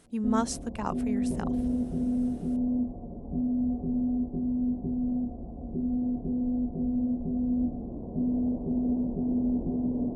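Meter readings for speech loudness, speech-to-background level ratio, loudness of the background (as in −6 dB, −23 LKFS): −33.5 LKFS, −3.5 dB, −30.0 LKFS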